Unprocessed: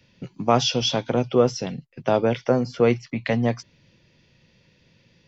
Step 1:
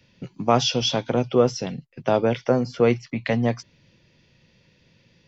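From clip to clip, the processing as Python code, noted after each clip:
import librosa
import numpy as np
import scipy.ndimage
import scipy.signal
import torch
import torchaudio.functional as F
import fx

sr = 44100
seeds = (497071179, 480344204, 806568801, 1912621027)

y = x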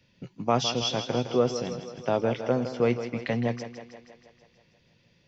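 y = fx.echo_thinned(x, sr, ms=160, feedback_pct=64, hz=170.0, wet_db=-10.0)
y = F.gain(torch.from_numpy(y), -5.5).numpy()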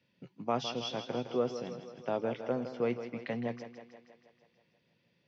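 y = scipy.signal.sosfilt(scipy.signal.butter(2, 150.0, 'highpass', fs=sr, output='sos'), x)
y = fx.air_absorb(y, sr, metres=120.0)
y = F.gain(torch.from_numpy(y), -7.0).numpy()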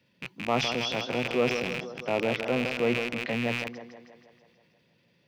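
y = fx.rattle_buzz(x, sr, strikes_db=-50.0, level_db=-27.0)
y = fx.transient(y, sr, attack_db=-3, sustain_db=5)
y = F.gain(torch.from_numpy(y), 6.0).numpy()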